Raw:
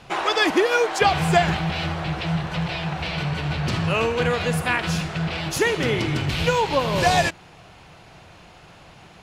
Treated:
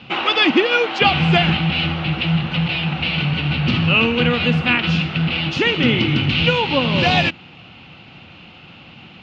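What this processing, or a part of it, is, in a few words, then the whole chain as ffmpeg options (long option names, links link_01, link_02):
guitar cabinet: -af "highpass=93,equalizer=frequency=240:width_type=q:width=4:gain=8,equalizer=frequency=420:width_type=q:width=4:gain=-7,equalizer=frequency=650:width_type=q:width=4:gain=-9,equalizer=frequency=1000:width_type=q:width=4:gain=-7,equalizer=frequency=1700:width_type=q:width=4:gain=-7,equalizer=frequency=2800:width_type=q:width=4:gain=8,lowpass=frequency=4000:width=0.5412,lowpass=frequency=4000:width=1.3066,volume=6dB"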